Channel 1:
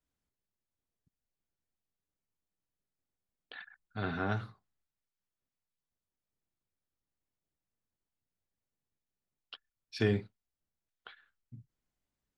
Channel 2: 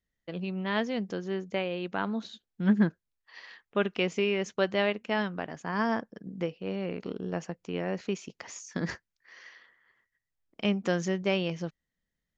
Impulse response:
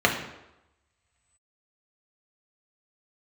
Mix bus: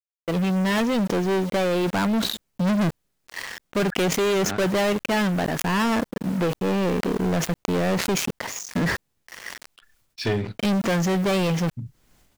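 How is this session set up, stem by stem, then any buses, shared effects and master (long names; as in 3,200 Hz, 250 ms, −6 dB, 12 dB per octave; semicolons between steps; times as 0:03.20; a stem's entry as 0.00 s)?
0.0 dB, 0.25 s, no send, automatic ducking −18 dB, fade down 0.30 s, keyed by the second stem
−12.0 dB, 0.00 s, no send, high-shelf EQ 3,700 Hz −8.5 dB; leveller curve on the samples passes 5; bit reduction 7 bits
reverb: not used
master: leveller curve on the samples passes 3; level that may fall only so fast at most 64 dB per second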